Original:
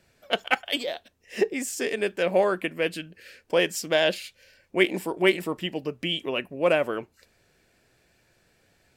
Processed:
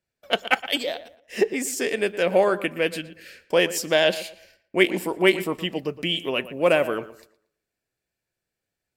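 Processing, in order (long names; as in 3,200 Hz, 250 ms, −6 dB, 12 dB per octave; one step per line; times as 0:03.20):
noise gate −55 dBFS, range −24 dB
high-shelf EQ 9,000 Hz +3.5 dB, from 0:06.16 +10.5 dB
tape delay 117 ms, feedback 31%, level −14 dB, low-pass 2,600 Hz
level +2.5 dB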